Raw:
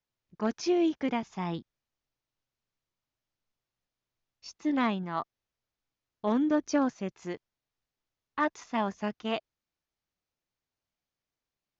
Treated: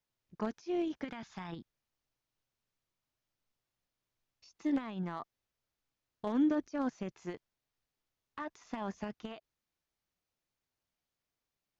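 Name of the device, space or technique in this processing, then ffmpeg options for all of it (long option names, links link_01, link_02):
de-esser from a sidechain: -filter_complex "[0:a]asettb=1/sr,asplit=3[link_01][link_02][link_03];[link_01]atrim=end=1.044[link_04];[link_02]atrim=start=1.04:end=1.52,asetpts=PTS-STARTPTS,afade=type=in:duration=0.004:curve=qsin,afade=type=out:start_time=0.476:duration=0.004:curve=qsin,equalizer=frequency=400:width_type=o:width=0.67:gain=-5,equalizer=frequency=1600:width_type=o:width=0.67:gain=10,equalizer=frequency=4000:width_type=o:width=0.67:gain=8[link_05];[link_03]atrim=start=1.516[link_06];[link_04][link_05]acrossfade=duration=0.004:curve1=hsin:curve2=qsin[link_07];[link_07][link_06]acrossfade=duration=0.004:curve1=qsin:curve2=hsin,asplit=2[link_08][link_09];[link_09]highpass=4900,apad=whole_len=520054[link_10];[link_08][link_10]sidechaincompress=threshold=-60dB:ratio=8:attack=1.6:release=45"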